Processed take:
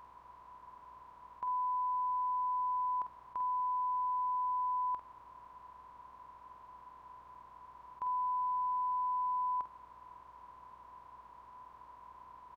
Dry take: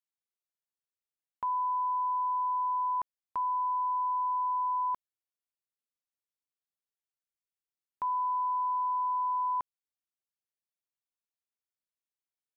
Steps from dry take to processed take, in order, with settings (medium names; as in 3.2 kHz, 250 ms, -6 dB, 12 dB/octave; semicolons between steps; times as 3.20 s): spectral levelling over time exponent 0.2; hum 60 Hz, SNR 33 dB; doubling 48 ms -8.5 dB; trim -7 dB